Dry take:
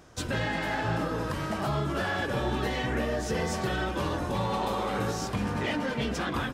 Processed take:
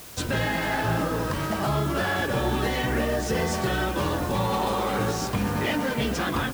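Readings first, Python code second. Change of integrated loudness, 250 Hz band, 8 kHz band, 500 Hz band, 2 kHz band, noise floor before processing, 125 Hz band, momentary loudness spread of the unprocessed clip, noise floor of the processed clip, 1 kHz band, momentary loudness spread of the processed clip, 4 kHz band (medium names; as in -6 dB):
+4.0 dB, +4.0 dB, +6.0 dB, +4.0 dB, +4.0 dB, -34 dBFS, +4.0 dB, 2 LU, -30 dBFS, +4.0 dB, 2 LU, +4.5 dB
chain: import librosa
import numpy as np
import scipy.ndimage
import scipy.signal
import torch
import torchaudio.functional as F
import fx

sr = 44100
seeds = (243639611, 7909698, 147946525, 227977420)

y = fx.quant_dither(x, sr, seeds[0], bits=8, dither='triangular')
y = F.gain(torch.from_numpy(y), 4.0).numpy()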